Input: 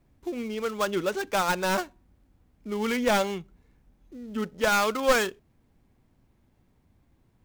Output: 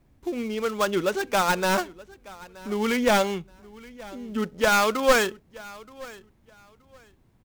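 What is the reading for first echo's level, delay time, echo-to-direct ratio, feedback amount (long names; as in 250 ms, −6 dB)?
−21.0 dB, 925 ms, −21.0 dB, 22%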